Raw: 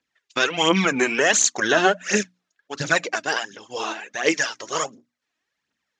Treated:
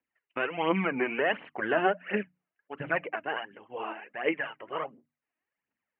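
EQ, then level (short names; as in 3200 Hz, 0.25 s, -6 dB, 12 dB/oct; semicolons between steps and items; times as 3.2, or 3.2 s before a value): rippled Chebyshev low-pass 3000 Hz, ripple 3 dB; air absorption 280 m; notches 50/100/150 Hz; -5.0 dB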